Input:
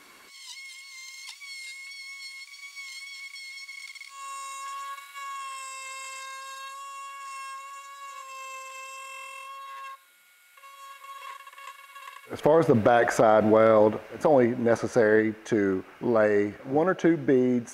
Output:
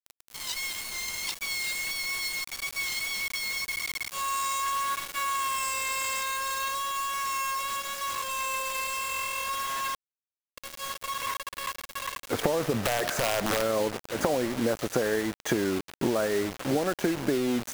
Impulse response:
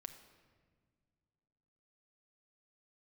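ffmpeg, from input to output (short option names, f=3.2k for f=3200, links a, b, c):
-filter_complex "[0:a]acompressor=threshold=-31dB:ratio=16,asettb=1/sr,asplit=3[a][b][c];[a]atrim=end=12.844[d];[b]atrim=start=12.84:end=13.62,asetpts=PTS-STARTPTS,afade=t=in:d=0.004:c=qsin,afade=t=out:st=0.776:d=0.004:c=qsin,aeval=exprs='(mod(23.7*val(0)+1,2)-1)/23.7':c=same[e];[c]atrim=start=13.616[f];[d][e]acrossfade=d=0.004:c1=hsin:c2=qsin[g];[g][f]acrossfade=d=0.004:c1=qsin:c2=hsin,acrusher=bits=6:mix=0:aa=0.000001,volume=8dB"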